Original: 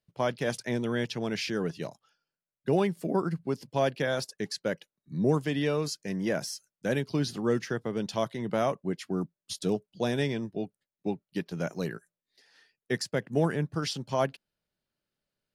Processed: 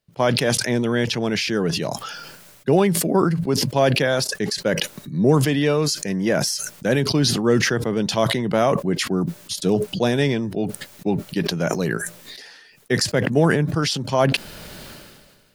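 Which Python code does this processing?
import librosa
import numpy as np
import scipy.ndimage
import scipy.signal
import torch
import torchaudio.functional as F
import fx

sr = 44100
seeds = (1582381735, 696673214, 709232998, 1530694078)

y = fx.sustainer(x, sr, db_per_s=35.0)
y = y * librosa.db_to_amplitude(8.5)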